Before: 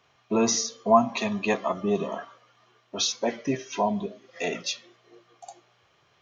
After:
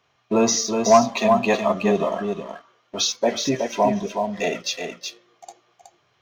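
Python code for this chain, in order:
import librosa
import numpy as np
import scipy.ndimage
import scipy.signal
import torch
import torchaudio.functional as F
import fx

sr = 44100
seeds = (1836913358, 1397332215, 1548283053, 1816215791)

p1 = x + fx.echo_single(x, sr, ms=370, db=-5.5, dry=0)
p2 = fx.dynamic_eq(p1, sr, hz=600.0, q=3.1, threshold_db=-38.0, ratio=4.0, max_db=5)
y = fx.leveller(p2, sr, passes=1)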